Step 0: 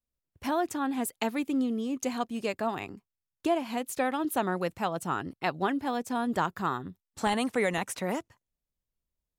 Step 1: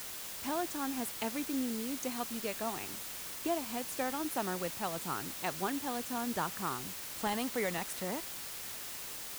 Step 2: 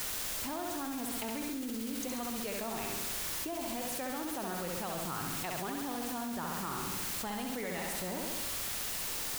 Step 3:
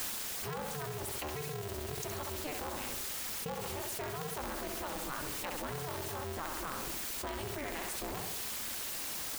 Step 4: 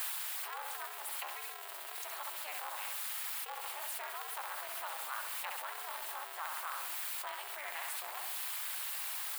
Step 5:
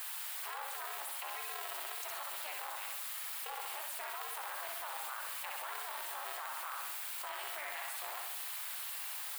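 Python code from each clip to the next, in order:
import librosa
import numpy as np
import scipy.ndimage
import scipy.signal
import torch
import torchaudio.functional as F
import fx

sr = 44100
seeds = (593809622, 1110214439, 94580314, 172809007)

y1 = fx.quant_dither(x, sr, seeds[0], bits=6, dither='triangular')
y1 = y1 * 10.0 ** (-7.0 / 20.0)
y2 = fx.low_shelf(y1, sr, hz=71.0, db=10.0)
y2 = fx.room_flutter(y2, sr, wall_m=11.5, rt60_s=0.94)
y2 = fx.env_flatten(y2, sr, amount_pct=100)
y2 = y2 * 10.0 ** (-9.0 / 20.0)
y3 = scipy.signal.sosfilt(scipy.signal.butter(4, 50.0, 'highpass', fs=sr, output='sos'), y2)
y3 = fx.dereverb_blind(y3, sr, rt60_s=0.74)
y3 = y3 * np.sign(np.sin(2.0 * np.pi * 150.0 * np.arange(len(y3)) / sr))
y4 = scipy.signal.sosfilt(scipy.signal.butter(4, 770.0, 'highpass', fs=sr, output='sos'), y3)
y4 = fx.peak_eq(y4, sr, hz=6000.0, db=-9.0, octaves=0.75)
y4 = y4 * 10.0 ** (1.0 / 20.0)
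y5 = fx.level_steps(y4, sr, step_db=17)
y5 = fx.mod_noise(y5, sr, seeds[1], snr_db=33)
y5 = fx.room_flutter(y5, sr, wall_m=10.0, rt60_s=0.46)
y5 = y5 * 10.0 ** (8.0 / 20.0)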